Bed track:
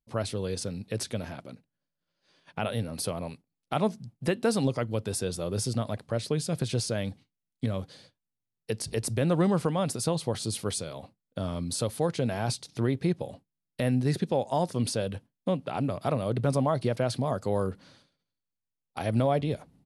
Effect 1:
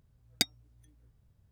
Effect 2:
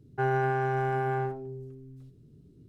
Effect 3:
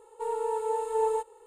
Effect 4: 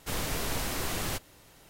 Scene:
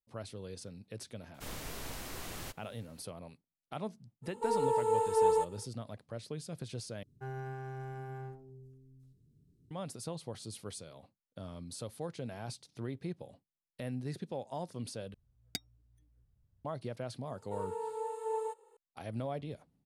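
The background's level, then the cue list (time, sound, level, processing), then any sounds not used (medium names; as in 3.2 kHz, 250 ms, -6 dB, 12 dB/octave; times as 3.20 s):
bed track -13 dB
1.34 s: add 4 -10.5 dB
4.22 s: add 3, fades 0.05 s
7.03 s: replace with 2 -18 dB + tone controls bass +8 dB, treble +11 dB
15.14 s: replace with 1 -12 dB + bass shelf 160 Hz +8 dB
17.31 s: add 3 -9 dB + high-pass 150 Hz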